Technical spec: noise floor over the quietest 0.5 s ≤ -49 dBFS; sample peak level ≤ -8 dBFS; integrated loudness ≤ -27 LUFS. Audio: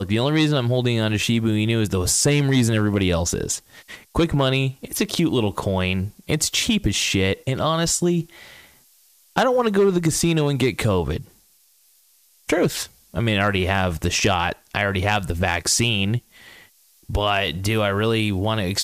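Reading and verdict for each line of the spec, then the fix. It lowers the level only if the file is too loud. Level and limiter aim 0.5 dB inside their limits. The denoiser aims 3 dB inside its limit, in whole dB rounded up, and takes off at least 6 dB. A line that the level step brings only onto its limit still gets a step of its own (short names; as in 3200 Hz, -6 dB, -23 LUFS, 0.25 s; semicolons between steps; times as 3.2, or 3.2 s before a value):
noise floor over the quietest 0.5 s -58 dBFS: OK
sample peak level -5.5 dBFS: fail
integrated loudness -21.0 LUFS: fail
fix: gain -6.5 dB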